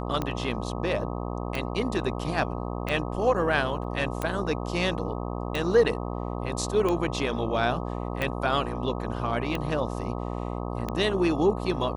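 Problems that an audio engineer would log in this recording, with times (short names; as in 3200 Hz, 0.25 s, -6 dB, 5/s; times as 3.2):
buzz 60 Hz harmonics 21 -32 dBFS
tick 45 rpm -15 dBFS
3.84 gap 3.1 ms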